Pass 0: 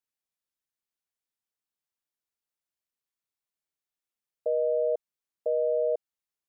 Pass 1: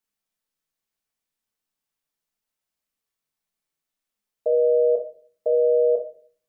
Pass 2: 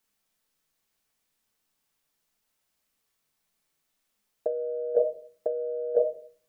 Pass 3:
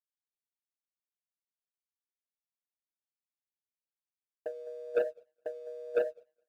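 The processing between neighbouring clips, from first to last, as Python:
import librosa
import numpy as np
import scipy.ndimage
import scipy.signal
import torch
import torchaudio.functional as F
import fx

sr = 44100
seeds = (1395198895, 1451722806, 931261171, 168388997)

y1 = fx.room_shoebox(x, sr, seeds[0], volume_m3=330.0, walls='furnished', distance_m=1.5)
y1 = F.gain(torch.from_numpy(y1), 4.0).numpy()
y2 = fx.over_compress(y1, sr, threshold_db=-25.0, ratio=-0.5)
y3 = fx.echo_feedback(y2, sr, ms=208, feedback_pct=39, wet_db=-15.5)
y3 = fx.leveller(y3, sr, passes=2)
y3 = fx.upward_expand(y3, sr, threshold_db=-35.0, expansion=2.5)
y3 = F.gain(torch.from_numpy(y3), -8.0).numpy()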